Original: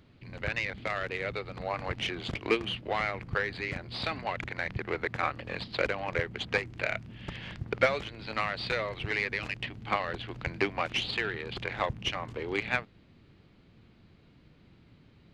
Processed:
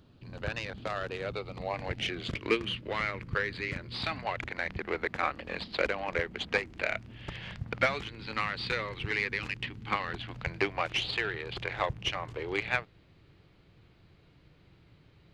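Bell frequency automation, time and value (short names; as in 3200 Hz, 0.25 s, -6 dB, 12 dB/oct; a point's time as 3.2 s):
bell -12 dB 0.37 oct
1.23 s 2100 Hz
2.4 s 740 Hz
3.93 s 740 Hz
4.54 s 120 Hz
6.85 s 120 Hz
8.1 s 650 Hz
10.03 s 650 Hz
10.59 s 230 Hz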